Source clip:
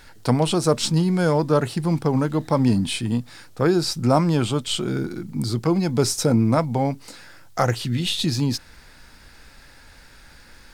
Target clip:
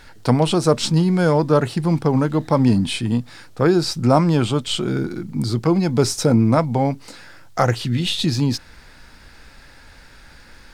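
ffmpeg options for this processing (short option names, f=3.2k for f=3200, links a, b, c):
-af "highshelf=f=7.5k:g=-7,volume=3dB"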